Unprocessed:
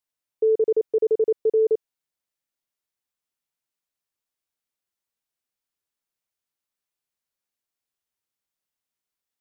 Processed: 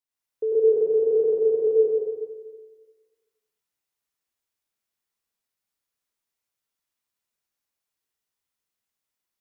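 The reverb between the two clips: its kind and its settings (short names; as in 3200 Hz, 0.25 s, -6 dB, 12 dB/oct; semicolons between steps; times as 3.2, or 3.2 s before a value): plate-style reverb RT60 1.5 s, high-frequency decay 0.9×, pre-delay 85 ms, DRR -8 dB; gain -6 dB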